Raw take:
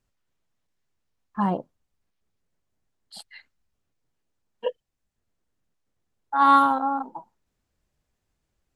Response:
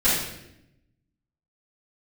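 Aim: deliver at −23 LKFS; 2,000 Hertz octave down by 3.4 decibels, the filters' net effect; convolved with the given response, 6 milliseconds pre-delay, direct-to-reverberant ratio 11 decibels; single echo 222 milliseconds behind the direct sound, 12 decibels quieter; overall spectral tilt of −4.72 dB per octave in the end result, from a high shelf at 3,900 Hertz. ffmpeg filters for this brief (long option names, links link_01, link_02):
-filter_complex "[0:a]equalizer=frequency=2000:width_type=o:gain=-7,highshelf=frequency=3900:gain=6.5,aecho=1:1:222:0.251,asplit=2[link_01][link_02];[1:a]atrim=start_sample=2205,adelay=6[link_03];[link_02][link_03]afir=irnorm=-1:irlink=0,volume=-27dB[link_04];[link_01][link_04]amix=inputs=2:normalize=0,volume=1dB"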